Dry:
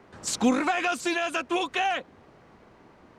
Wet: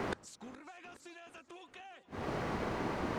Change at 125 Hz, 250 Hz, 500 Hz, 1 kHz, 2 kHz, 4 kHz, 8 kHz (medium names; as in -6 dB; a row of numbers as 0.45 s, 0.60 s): +4.0 dB, -13.0 dB, -10.0 dB, -13.5 dB, -15.0 dB, -17.5 dB, -20.5 dB